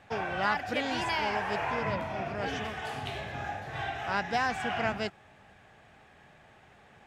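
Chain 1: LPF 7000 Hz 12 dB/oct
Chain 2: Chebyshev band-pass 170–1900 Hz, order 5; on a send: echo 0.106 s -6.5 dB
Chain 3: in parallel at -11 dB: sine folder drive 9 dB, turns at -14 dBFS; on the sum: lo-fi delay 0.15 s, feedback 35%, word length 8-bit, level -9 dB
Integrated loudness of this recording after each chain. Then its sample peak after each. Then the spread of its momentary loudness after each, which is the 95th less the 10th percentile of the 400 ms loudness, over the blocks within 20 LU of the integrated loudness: -32.0, -33.0, -25.5 LUFS; -14.5, -15.0, -14.0 dBFS; 8, 8, 6 LU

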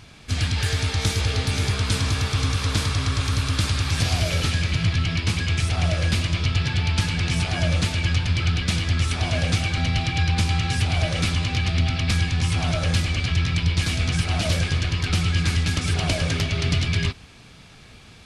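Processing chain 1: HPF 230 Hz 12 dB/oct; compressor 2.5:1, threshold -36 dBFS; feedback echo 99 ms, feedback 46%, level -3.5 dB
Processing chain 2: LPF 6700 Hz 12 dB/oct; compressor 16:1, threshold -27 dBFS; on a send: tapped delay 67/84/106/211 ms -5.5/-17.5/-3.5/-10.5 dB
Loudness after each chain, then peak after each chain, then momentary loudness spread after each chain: -32.5, -29.0 LUFS; -18.0, -15.0 dBFS; 1, 2 LU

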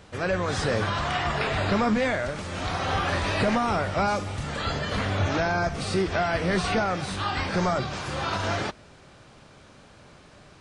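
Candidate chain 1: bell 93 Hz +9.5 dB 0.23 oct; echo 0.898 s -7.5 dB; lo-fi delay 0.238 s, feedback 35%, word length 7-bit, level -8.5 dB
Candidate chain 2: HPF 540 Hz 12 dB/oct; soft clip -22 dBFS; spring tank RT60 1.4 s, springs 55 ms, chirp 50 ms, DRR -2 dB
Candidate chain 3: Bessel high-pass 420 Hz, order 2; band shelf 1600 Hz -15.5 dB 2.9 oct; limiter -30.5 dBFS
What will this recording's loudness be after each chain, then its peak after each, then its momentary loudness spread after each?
-24.5, -26.5, -39.5 LUFS; -9.5, -12.5, -30.5 dBFS; 10, 5, 3 LU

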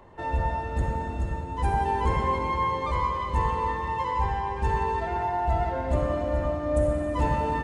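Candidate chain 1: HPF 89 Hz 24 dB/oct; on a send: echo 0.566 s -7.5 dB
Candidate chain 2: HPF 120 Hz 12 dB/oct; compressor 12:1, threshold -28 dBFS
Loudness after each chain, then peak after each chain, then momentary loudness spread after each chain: -27.5, -32.5 LUFS; -13.5, -21.0 dBFS; 6, 2 LU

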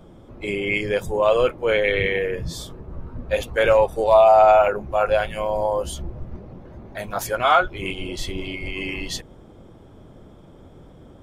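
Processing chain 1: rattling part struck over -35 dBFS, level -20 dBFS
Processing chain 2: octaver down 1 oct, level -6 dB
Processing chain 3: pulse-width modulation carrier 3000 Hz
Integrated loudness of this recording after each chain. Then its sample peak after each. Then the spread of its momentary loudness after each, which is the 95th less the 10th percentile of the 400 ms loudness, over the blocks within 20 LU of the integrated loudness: -20.5, -20.0, -21.0 LUFS; -4.0, -4.0, -5.0 dBFS; 19, 20, 10 LU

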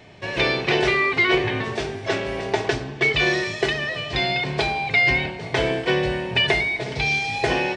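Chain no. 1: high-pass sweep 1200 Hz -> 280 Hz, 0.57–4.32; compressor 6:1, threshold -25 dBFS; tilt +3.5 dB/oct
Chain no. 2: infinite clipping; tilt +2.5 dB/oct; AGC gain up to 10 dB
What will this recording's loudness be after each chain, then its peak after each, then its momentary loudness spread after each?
-25.0, -10.0 LUFS; -9.5, -2.0 dBFS; 7, 3 LU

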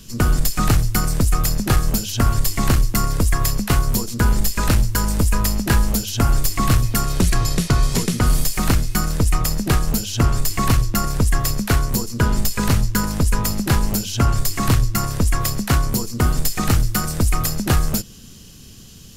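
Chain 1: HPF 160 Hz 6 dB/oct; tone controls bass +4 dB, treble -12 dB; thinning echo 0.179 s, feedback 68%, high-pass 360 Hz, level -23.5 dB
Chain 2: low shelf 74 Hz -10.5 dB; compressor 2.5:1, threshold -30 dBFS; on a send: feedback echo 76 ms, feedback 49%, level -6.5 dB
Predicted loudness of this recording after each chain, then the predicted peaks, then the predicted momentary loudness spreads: -22.5, -29.0 LUFS; -5.5, -13.0 dBFS; 4, 2 LU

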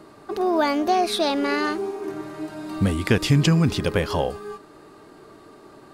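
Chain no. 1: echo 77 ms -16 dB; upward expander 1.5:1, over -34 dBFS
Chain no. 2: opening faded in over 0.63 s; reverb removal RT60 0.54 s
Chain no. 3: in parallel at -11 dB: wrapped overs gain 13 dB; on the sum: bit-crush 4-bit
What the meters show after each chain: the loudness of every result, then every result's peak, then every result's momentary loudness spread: -24.5, -23.5, -19.5 LUFS; -7.5, -7.0, -7.5 dBFS; 21, 16, 14 LU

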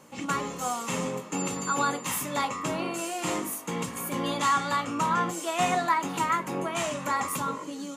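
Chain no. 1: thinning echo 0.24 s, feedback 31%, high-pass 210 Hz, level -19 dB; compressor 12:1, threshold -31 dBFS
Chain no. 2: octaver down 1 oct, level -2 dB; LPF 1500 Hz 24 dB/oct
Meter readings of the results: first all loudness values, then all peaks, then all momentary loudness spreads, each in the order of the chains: -35.0, -30.0 LUFS; -20.5, -14.5 dBFS; 2, 7 LU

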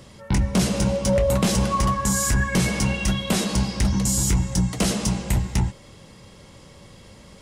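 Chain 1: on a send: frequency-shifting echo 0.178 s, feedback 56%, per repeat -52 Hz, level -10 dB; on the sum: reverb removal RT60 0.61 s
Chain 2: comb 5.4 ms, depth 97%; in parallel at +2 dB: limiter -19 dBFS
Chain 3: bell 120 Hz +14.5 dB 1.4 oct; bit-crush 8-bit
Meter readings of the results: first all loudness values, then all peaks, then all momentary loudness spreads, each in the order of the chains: -23.0, -15.0, -14.5 LUFS; -10.5, -5.0, -1.0 dBFS; 5, 6, 4 LU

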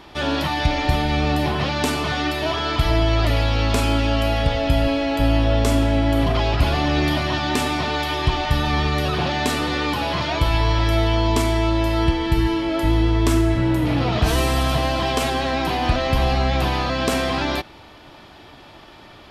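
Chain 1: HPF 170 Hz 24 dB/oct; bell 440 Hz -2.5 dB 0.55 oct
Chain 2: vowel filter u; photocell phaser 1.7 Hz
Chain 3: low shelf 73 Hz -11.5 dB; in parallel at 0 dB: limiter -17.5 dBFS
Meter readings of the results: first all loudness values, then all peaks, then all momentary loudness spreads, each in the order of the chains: -22.5, -33.5, -17.5 LUFS; -7.0, -19.0, -5.0 dBFS; 2, 8, 1 LU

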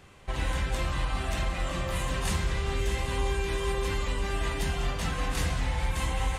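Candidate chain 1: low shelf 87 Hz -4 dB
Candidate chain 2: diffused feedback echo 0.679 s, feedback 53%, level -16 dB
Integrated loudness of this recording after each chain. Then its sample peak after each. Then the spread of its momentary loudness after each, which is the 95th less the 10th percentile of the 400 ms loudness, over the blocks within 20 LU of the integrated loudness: -32.0, -30.5 LUFS; -19.0, -17.5 dBFS; 2, 2 LU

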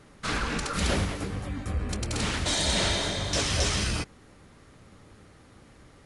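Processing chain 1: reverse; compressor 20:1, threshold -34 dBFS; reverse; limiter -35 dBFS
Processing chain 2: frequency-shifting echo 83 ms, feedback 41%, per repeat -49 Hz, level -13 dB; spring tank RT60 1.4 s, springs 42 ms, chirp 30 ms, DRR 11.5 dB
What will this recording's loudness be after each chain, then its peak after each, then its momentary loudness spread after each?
-45.0, -27.5 LUFS; -35.0, -13.0 dBFS; 12, 9 LU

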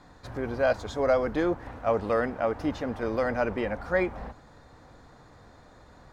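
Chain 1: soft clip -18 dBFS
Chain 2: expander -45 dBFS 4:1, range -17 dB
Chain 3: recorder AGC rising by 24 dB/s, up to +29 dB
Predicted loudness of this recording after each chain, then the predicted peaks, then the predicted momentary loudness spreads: -30.0, -28.0, -28.0 LUFS; -18.5, -12.0, -12.0 dBFS; 8, 9, 9 LU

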